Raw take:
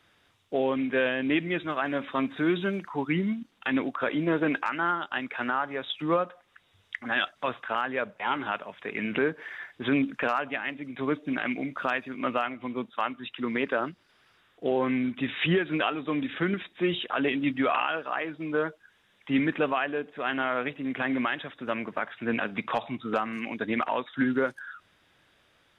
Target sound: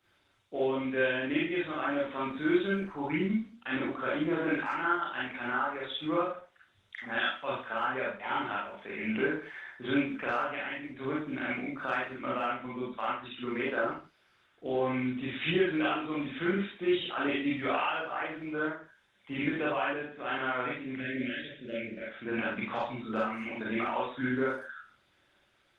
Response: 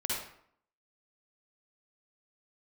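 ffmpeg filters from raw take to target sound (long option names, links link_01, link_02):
-filter_complex "[0:a]asplit=3[link_01][link_02][link_03];[link_01]afade=type=out:start_time=20.95:duration=0.02[link_04];[link_02]asuperstop=centerf=980:order=8:qfactor=0.87,afade=type=in:start_time=20.95:duration=0.02,afade=type=out:start_time=22.08:duration=0.02[link_05];[link_03]afade=type=in:start_time=22.08:duration=0.02[link_06];[link_04][link_05][link_06]amix=inputs=3:normalize=0[link_07];[1:a]atrim=start_sample=2205,afade=type=out:start_time=0.41:duration=0.01,atrim=end_sample=18522,asetrate=66150,aresample=44100[link_08];[link_07][link_08]afir=irnorm=-1:irlink=0,volume=-4.5dB" -ar 48000 -c:a libopus -b:a 20k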